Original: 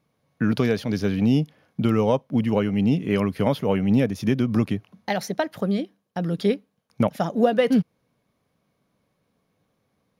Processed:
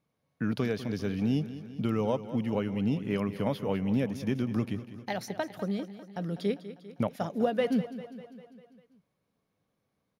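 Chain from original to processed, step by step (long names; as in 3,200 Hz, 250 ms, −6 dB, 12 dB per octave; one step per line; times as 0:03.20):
repeating echo 199 ms, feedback 60%, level −14 dB
level −8.5 dB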